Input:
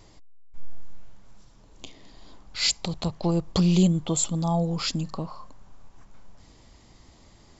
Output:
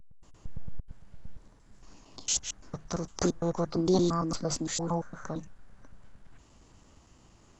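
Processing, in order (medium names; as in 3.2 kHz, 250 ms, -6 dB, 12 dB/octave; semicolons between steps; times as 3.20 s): slices played last to first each 114 ms, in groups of 4; formant shift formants +6 st; trim -5 dB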